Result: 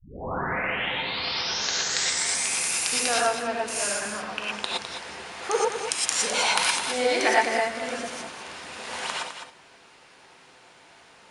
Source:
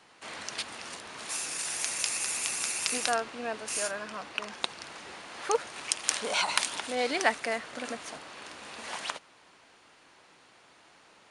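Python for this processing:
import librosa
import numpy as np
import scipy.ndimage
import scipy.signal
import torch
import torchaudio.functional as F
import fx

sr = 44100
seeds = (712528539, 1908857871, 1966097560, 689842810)

y = fx.tape_start_head(x, sr, length_s=2.59)
y = y + 10.0 ** (-8.5 / 20.0) * np.pad(y, (int(207 * sr / 1000.0), 0))[:len(y)]
y = fx.rev_gated(y, sr, seeds[0], gate_ms=140, shape='rising', drr_db=-4.0)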